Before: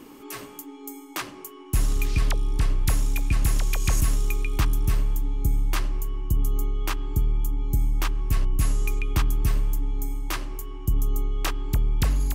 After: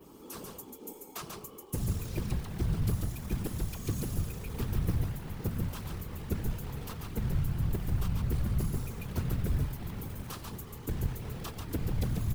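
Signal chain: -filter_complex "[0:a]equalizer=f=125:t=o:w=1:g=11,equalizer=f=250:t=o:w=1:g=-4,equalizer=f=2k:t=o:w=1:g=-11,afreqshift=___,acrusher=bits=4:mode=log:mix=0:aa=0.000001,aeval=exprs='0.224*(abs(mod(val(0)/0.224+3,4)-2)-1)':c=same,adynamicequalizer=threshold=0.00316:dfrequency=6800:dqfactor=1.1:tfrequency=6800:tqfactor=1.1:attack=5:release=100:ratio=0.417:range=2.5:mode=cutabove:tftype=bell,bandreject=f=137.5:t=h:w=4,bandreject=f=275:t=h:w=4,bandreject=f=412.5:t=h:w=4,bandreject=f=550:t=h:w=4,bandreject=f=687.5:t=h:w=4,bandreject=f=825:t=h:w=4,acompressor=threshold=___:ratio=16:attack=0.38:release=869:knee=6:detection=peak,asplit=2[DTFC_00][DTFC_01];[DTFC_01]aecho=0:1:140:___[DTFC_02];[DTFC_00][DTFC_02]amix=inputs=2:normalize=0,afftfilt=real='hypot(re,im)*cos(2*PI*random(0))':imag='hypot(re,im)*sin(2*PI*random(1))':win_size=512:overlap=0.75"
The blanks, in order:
19, -20dB, 0.631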